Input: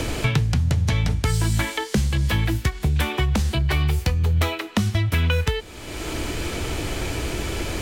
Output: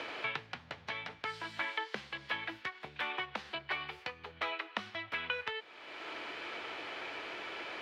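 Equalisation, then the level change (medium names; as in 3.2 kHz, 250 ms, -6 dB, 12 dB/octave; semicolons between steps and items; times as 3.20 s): band-pass filter 810 Hz, Q 0.55; distance through air 340 m; differentiator; +10.0 dB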